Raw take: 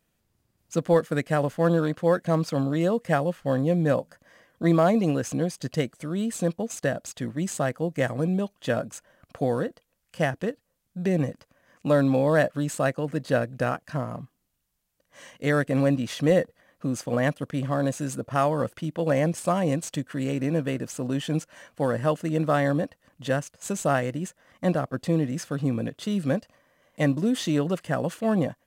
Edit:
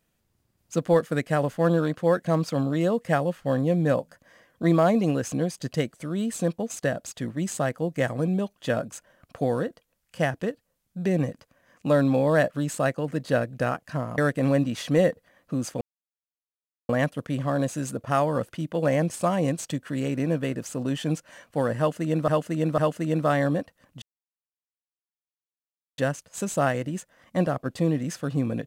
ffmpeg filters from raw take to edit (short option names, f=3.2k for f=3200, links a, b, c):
-filter_complex "[0:a]asplit=6[a][b][c][d][e][f];[a]atrim=end=14.182[g];[b]atrim=start=15.498:end=17.13,asetpts=PTS-STARTPTS,afade=t=out:st=1.628:d=0.004:c=hsin,apad=pad_dur=1.08[h];[c]atrim=start=17.13:end=22.522,asetpts=PTS-STARTPTS,afade=t=in:d=0.004:c=hsin[i];[d]atrim=start=22.018:end=22.522[j];[e]atrim=start=22.018:end=23.26,asetpts=PTS-STARTPTS,afade=t=out:st=1.238:d=0.004:c=hsin,apad=pad_dur=1.96[k];[f]atrim=start=23.26,asetpts=PTS-STARTPTS,afade=t=in:d=0.004:c=hsin[l];[h][i]concat=n=2:v=0:a=1[m];[g][m]acrossfade=d=0.004:c1=hsin:c2=hsin[n];[n][j]acrossfade=d=0.004:c1=hsin:c2=hsin[o];[k][l]concat=n=2:v=0:a=1[p];[o][p]acrossfade=d=0.004:c1=hsin:c2=hsin"